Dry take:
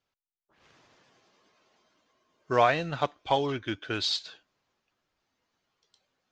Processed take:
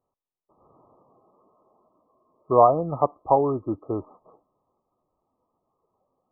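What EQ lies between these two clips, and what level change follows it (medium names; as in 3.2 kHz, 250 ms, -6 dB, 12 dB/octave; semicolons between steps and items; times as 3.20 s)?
brick-wall FIR low-pass 1.3 kHz; peaking EQ 530 Hz +4 dB 2.2 oct; +3.5 dB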